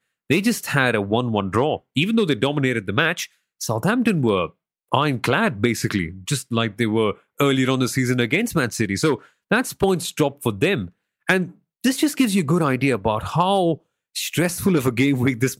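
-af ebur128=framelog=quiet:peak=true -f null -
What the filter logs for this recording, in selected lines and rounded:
Integrated loudness:
  I:         -21.0 LUFS
  Threshold: -31.2 LUFS
Loudness range:
  LRA:         1.4 LU
  Threshold: -41.3 LUFS
  LRA low:   -22.0 LUFS
  LRA high:  -20.5 LUFS
True peak:
  Peak:       -1.6 dBFS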